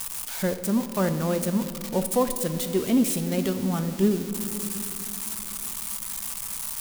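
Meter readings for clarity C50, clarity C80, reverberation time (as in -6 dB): 10.0 dB, 11.5 dB, 2.7 s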